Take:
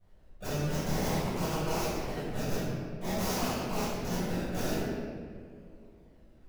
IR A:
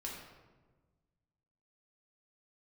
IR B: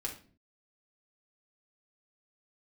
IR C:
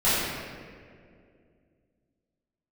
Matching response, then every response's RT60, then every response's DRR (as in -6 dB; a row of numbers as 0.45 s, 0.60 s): C; 1.3 s, 0.45 s, 2.2 s; -3.5 dB, -2.0 dB, -14.0 dB